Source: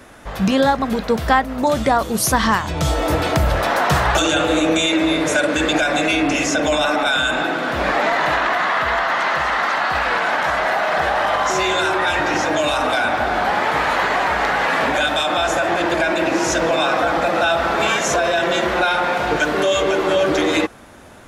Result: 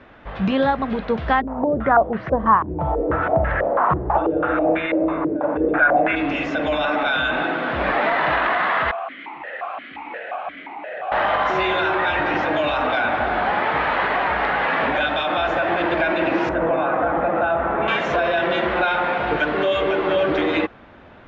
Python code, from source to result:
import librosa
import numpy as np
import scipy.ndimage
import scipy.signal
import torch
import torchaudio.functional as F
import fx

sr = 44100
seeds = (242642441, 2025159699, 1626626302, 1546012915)

y = fx.filter_held_lowpass(x, sr, hz=6.1, low_hz=350.0, high_hz=1800.0, at=(1.4, 6.15), fade=0.02)
y = fx.vowel_held(y, sr, hz=5.7, at=(8.91, 11.12))
y = fx.lowpass(y, sr, hz=1400.0, slope=12, at=(16.49, 17.88))
y = scipy.signal.sosfilt(scipy.signal.butter(4, 3300.0, 'lowpass', fs=sr, output='sos'), y)
y = fx.rider(y, sr, range_db=10, speed_s=2.0)
y = y * 10.0 ** (-3.5 / 20.0)